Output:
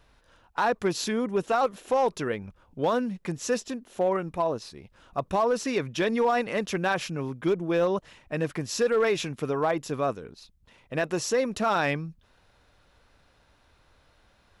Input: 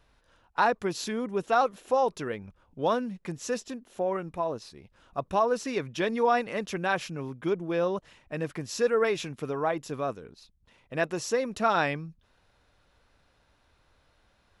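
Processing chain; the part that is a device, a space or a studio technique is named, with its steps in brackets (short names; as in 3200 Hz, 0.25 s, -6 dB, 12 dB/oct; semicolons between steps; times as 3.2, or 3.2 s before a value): limiter into clipper (limiter -19 dBFS, peak gain reduction 7 dB; hard clip -21 dBFS, distortion -26 dB); gain +4 dB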